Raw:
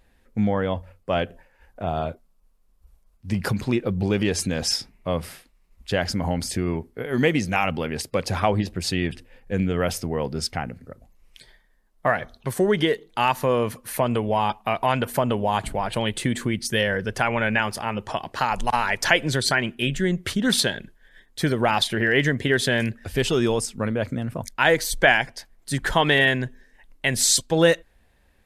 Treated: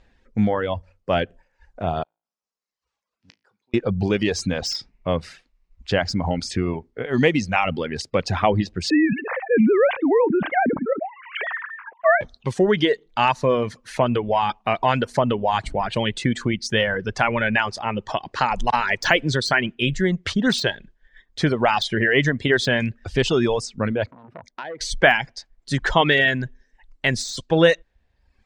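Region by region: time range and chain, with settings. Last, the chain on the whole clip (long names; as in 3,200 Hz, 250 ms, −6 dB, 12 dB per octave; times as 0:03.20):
0:02.03–0:03.74: meter weighting curve A + gate with flip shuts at −31 dBFS, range −31 dB + tuned comb filter 55 Hz, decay 0.45 s, mix 70%
0:08.90–0:12.21: three sine waves on the formant tracks + low-pass filter 2,100 Hz 24 dB per octave + envelope flattener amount 70%
0:24.06–0:24.81: resonant band-pass 540 Hz, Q 0.56 + downward compressor 10 to 1, threshold −30 dBFS + saturating transformer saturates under 1,500 Hz
whole clip: low-pass filter 6,600 Hz 24 dB per octave; de-essing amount 55%; reverb reduction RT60 0.9 s; level +3 dB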